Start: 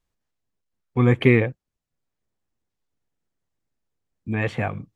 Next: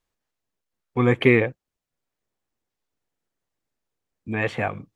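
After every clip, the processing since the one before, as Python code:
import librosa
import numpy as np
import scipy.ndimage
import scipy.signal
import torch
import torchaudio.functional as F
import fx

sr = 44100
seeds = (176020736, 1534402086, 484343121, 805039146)

y = fx.bass_treble(x, sr, bass_db=-7, treble_db=-1)
y = y * 10.0 ** (2.0 / 20.0)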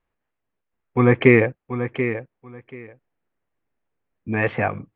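y = scipy.signal.sosfilt(scipy.signal.butter(4, 2600.0, 'lowpass', fs=sr, output='sos'), x)
y = fx.echo_feedback(y, sr, ms=734, feedback_pct=17, wet_db=-10)
y = y * 10.0 ** (3.5 / 20.0)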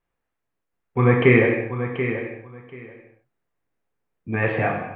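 y = fx.rev_gated(x, sr, seeds[0], gate_ms=330, shape='falling', drr_db=-0.5)
y = y * 10.0 ** (-3.0 / 20.0)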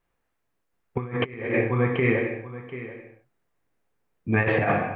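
y = fx.over_compress(x, sr, threshold_db=-23.0, ratio=-0.5)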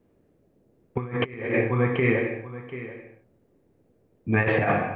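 y = fx.dmg_noise_band(x, sr, seeds[1], low_hz=61.0, high_hz=500.0, level_db=-64.0)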